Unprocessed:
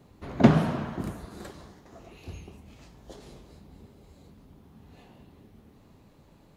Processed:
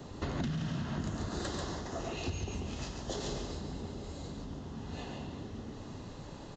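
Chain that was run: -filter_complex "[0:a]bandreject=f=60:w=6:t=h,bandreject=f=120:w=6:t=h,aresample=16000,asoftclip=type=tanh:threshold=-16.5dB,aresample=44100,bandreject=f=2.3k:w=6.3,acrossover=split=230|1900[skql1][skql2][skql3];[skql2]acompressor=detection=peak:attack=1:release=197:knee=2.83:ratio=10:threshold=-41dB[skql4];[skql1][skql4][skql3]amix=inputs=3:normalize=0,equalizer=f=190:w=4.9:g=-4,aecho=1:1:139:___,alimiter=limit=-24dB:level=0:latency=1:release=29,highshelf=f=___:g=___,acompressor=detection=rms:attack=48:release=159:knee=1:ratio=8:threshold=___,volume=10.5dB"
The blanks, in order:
0.531, 5.2k, 7.5, -45dB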